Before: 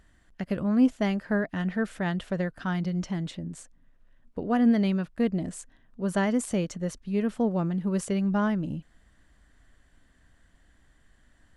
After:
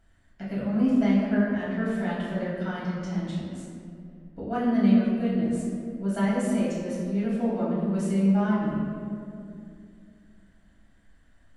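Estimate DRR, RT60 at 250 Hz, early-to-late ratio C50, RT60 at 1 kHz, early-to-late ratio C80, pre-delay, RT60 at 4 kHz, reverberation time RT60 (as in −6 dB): −8.5 dB, 3.2 s, −0.5 dB, 2.2 s, 1.0 dB, 4 ms, 1.3 s, 2.5 s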